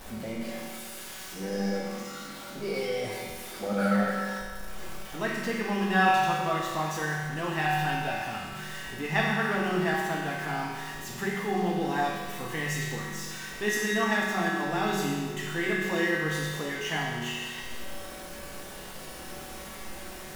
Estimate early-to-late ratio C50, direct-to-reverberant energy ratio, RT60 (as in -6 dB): -0.5 dB, -5.5 dB, 1.7 s